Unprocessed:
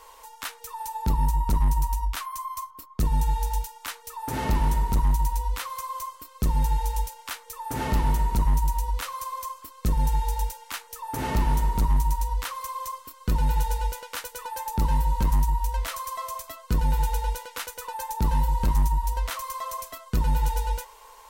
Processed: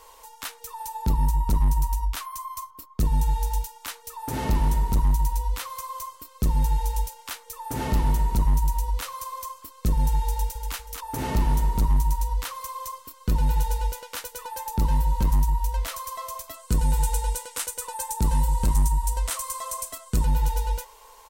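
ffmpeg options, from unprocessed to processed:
-filter_complex "[0:a]asplit=2[s0][s1];[s1]afade=t=in:st=10.31:d=0.01,afade=t=out:st=10.76:d=0.01,aecho=0:1:240|480|720|960:0.501187|0.150356|0.0451069|0.0135321[s2];[s0][s2]amix=inputs=2:normalize=0,asettb=1/sr,asplit=3[s3][s4][s5];[s3]atrim=end=16.544[s6];[s4]atrim=start=16.54:end=20.25,asetpts=PTS-STARTPTS,afade=t=in:d=0.004:c=qsin,afade=t=out:st=3.706:d=0.004:c=qsin,equalizer=f=8500:w=1.6:g=11.5[s7];[s5]atrim=start=20.246[s8];[s6][s7]acrossfade=d=0.004:c1=hsin:c2=qsin[s9];[s9][s8]acrossfade=d=0.004:c1=qsin:c2=hsin,equalizer=f=1500:w=0.61:g=-4,acontrast=80,volume=0.531"

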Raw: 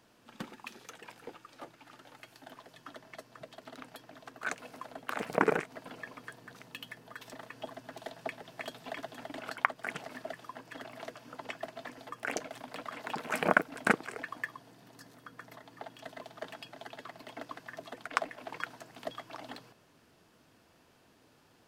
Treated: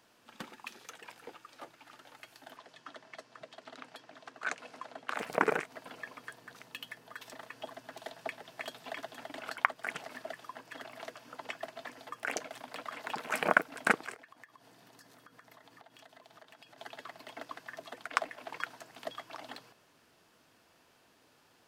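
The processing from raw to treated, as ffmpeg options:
-filter_complex "[0:a]asettb=1/sr,asplit=3[s0][s1][s2];[s0]atrim=end=2.574[s3];[s1]atrim=start=2.57:end=5.14,asetpts=PTS-STARTPTS,afade=t=in:d=0.004:c=qsin,afade=t=out:st=2.566:d=0.004:c=qsin,highpass=110,lowpass=7500[s4];[s2]atrim=start=5.136[s5];[s3][s4]acrossfade=d=0.004:c1=hsin:c2=qsin[s6];[s6][s5]acrossfade=d=0.004:c1=qsin:c2=hsin,asettb=1/sr,asplit=3[s7][s8][s9];[s7]atrim=end=14.144[s10];[s8]atrim=start=14.14:end=16.78,asetpts=PTS-STARTPTS,afade=t=in:d=0.004:c=qsin,afade=t=out:st=2.636:d=0.004:c=qsin,acompressor=threshold=0.00251:ratio=6:attack=3.2:release=140:knee=1:detection=peak[s11];[s9]atrim=start=16.776[s12];[s10][s11]acrossfade=d=0.004:c1=hsin:c2=qsin[s13];[s13][s12]acrossfade=d=0.004:c1=qsin:c2=hsin,lowshelf=f=390:g=-8.5,volume=1.12"

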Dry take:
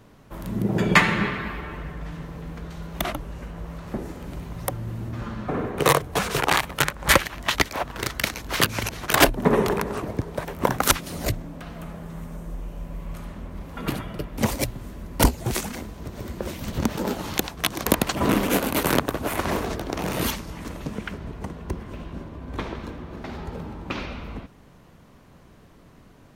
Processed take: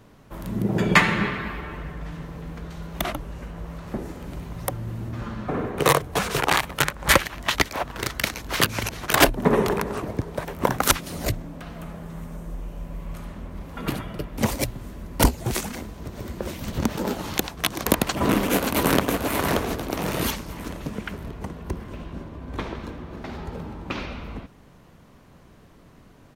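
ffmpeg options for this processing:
-filter_complex "[0:a]asplit=2[s0][s1];[s1]afade=t=in:st=18.02:d=0.01,afade=t=out:st=19.02:d=0.01,aecho=0:1:580|1160|1740|2320|2900:0.530884|0.212354|0.0849415|0.0339766|0.0135906[s2];[s0][s2]amix=inputs=2:normalize=0"

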